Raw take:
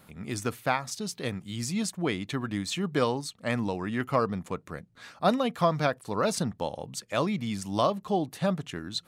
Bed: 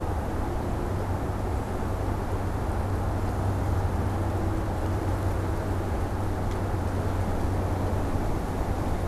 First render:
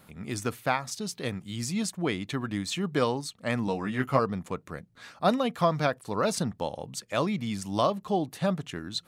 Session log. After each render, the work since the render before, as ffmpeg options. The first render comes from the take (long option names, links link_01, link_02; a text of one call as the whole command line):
ffmpeg -i in.wav -filter_complex "[0:a]asettb=1/sr,asplit=3[link_01][link_02][link_03];[link_01]atrim=end=3.664[link_04];[link_02]atrim=start=3.66:end=4.19,asetpts=PTS-STARTPTS,afade=type=in:duration=0.004:curve=qsin,afade=type=out:start_time=0.526:duration=0.004:curve=qsin,asplit=2[link_05][link_06];[link_06]adelay=15,volume=-4dB[link_07];[link_05][link_07]amix=inputs=2:normalize=0,atrim=end_sample=23373[link_08];[link_03]atrim=start=4.186[link_09];[link_04][link_08]acrossfade=duration=0.004:curve1=hsin:curve2=qsin[link_10];[link_10][link_09]acrossfade=duration=0.004:curve1=qsin:curve2=hsin" out.wav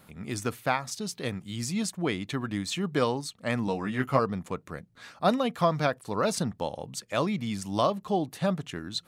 ffmpeg -i in.wav -af anull out.wav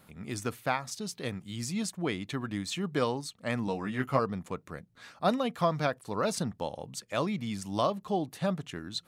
ffmpeg -i in.wav -af "volume=-3dB" out.wav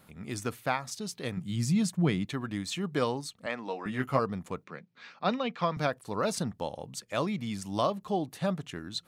ffmpeg -i in.wav -filter_complex "[0:a]asettb=1/sr,asplit=3[link_01][link_02][link_03];[link_01]atrim=end=1.374[link_04];[link_02]atrim=start=1.37:end=2.25,asetpts=PTS-STARTPTS,afade=type=in:duration=0.004:curve=qsin,afade=type=out:start_time=0.876:duration=0.004:curve=qsin,equalizer=frequency=150:width=1.5:gain=13.5[link_05];[link_03]atrim=start=2.246[link_06];[link_04][link_05]acrossfade=duration=0.004:curve1=hsin:curve2=qsin[link_07];[link_07][link_06]acrossfade=duration=0.004:curve1=qsin:curve2=hsin,asettb=1/sr,asplit=3[link_08][link_09][link_10];[link_08]atrim=end=3.464[link_11];[link_09]atrim=start=3.46:end=3.86,asetpts=PTS-STARTPTS,afade=type=in:duration=0.004:curve=qsin,afade=type=out:start_time=0.396:duration=0.004:curve=qsin,highpass=390,lowpass=4500[link_12];[link_10]atrim=start=3.856[link_13];[link_11][link_12]acrossfade=duration=0.004:curve1=hsin:curve2=qsin[link_14];[link_14][link_13]acrossfade=duration=0.004:curve1=qsin:curve2=hsin,asettb=1/sr,asplit=3[link_15][link_16][link_17];[link_15]atrim=end=4.644[link_18];[link_16]atrim=start=4.64:end=5.77,asetpts=PTS-STARTPTS,afade=type=in:duration=0.004:curve=qsin,afade=type=out:start_time=1.126:duration=0.004:curve=qsin,highpass=frequency=160:width=0.5412,highpass=frequency=160:width=1.3066,equalizer=frequency=300:width_type=q:width=4:gain=-6,equalizer=frequency=650:width_type=q:width=4:gain=-5,equalizer=frequency=2400:width_type=q:width=4:gain=6,lowpass=frequency=5400:width=0.5412,lowpass=frequency=5400:width=1.3066[link_19];[link_17]atrim=start=5.766[link_20];[link_18][link_19]acrossfade=duration=0.004:curve1=hsin:curve2=qsin[link_21];[link_21][link_20]acrossfade=duration=0.004:curve1=qsin:curve2=hsin" out.wav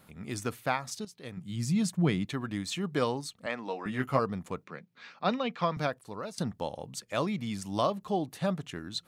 ffmpeg -i in.wav -filter_complex "[0:a]asplit=3[link_01][link_02][link_03];[link_01]atrim=end=1.05,asetpts=PTS-STARTPTS,afade=type=out:start_time=1.046:duration=0.004:curve=hsin:silence=0.199526[link_04];[link_02]atrim=start=1.05:end=6.38,asetpts=PTS-STARTPTS,afade=type=in:duration=0.86:silence=0.199526,afade=type=out:start_time=4.68:duration=0.65:silence=0.158489[link_05];[link_03]atrim=start=6.38,asetpts=PTS-STARTPTS,afade=type=in:duration=0.004:curve=hsin:silence=0.158489[link_06];[link_04][link_05][link_06]concat=n=3:v=0:a=1" out.wav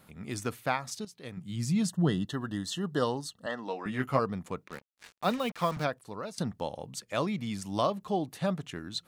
ffmpeg -i in.wav -filter_complex "[0:a]asettb=1/sr,asplit=3[link_01][link_02][link_03];[link_01]atrim=end=1.874[link_04];[link_02]atrim=start=1.87:end=3.68,asetpts=PTS-STARTPTS,afade=type=in:duration=0.004:curve=qsin,afade=type=out:start_time=1.806:duration=0.004:curve=qsin,asuperstop=centerf=2300:order=20:qfactor=3.4[link_05];[link_03]atrim=start=3.676[link_06];[link_04][link_05]acrossfade=duration=0.004:curve1=hsin:curve2=qsin[link_07];[link_07][link_06]acrossfade=duration=0.004:curve1=qsin:curve2=hsin,asplit=3[link_08][link_09][link_10];[link_08]afade=type=out:start_time=4.67:duration=0.02[link_11];[link_09]acrusher=bits=6:mix=0:aa=0.5,afade=type=in:start_time=4.67:duration=0.02,afade=type=out:start_time=5.83:duration=0.02[link_12];[link_10]afade=type=in:start_time=5.83:duration=0.02[link_13];[link_11][link_12][link_13]amix=inputs=3:normalize=0" out.wav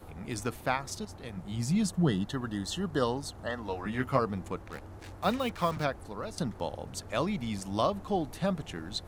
ffmpeg -i in.wav -i bed.wav -filter_complex "[1:a]volume=-19.5dB[link_01];[0:a][link_01]amix=inputs=2:normalize=0" out.wav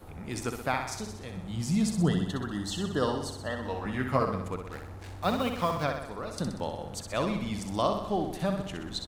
ffmpeg -i in.wav -af "aecho=1:1:63|126|189|252|315|378|441|504:0.473|0.274|0.159|0.0923|0.0535|0.0311|0.018|0.0104" out.wav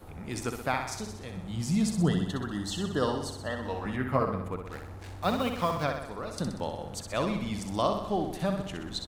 ffmpeg -i in.wav -filter_complex "[0:a]asettb=1/sr,asplit=3[link_01][link_02][link_03];[link_01]atrim=end=3.964[link_04];[link_02]atrim=start=3.96:end=4.66,asetpts=PTS-STARTPTS,afade=type=in:duration=0.004:curve=qsin,afade=type=out:start_time=0.696:duration=0.004:curve=qsin,equalizer=frequency=6000:width_type=o:width=1.7:gain=-9.5[link_05];[link_03]atrim=start=4.656[link_06];[link_04][link_05]acrossfade=duration=0.004:curve1=hsin:curve2=qsin[link_07];[link_07][link_06]acrossfade=duration=0.004:curve1=qsin:curve2=hsin" out.wav